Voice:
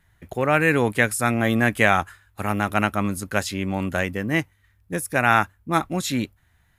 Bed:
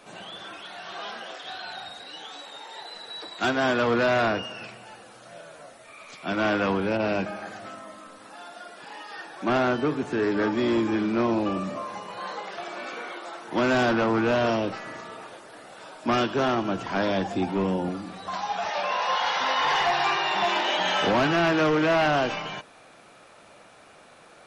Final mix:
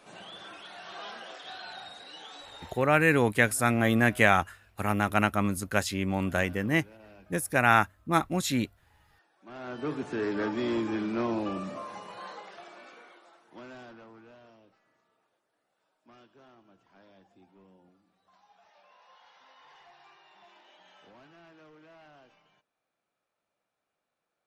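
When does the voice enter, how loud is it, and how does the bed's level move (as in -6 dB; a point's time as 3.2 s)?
2.40 s, -3.5 dB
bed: 2.68 s -5.5 dB
2.94 s -27.5 dB
9.41 s -27.5 dB
9.91 s -6 dB
12.09 s -6 dB
14.52 s -33.5 dB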